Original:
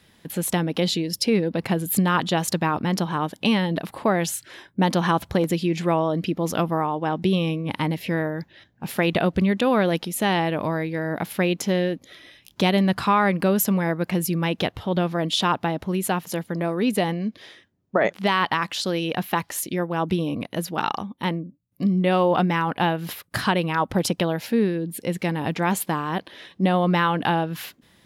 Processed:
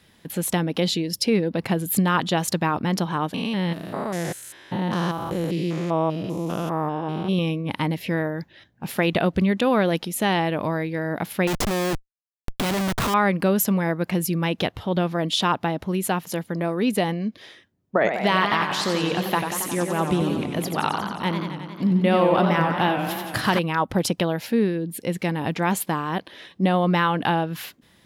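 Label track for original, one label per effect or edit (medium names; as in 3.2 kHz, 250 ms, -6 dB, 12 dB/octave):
3.340000	7.390000	spectrogram pixelated in time every 200 ms
11.470000	13.140000	Schmitt trigger flips at -29.5 dBFS
17.970000	23.590000	modulated delay 90 ms, feedback 75%, depth 162 cents, level -7 dB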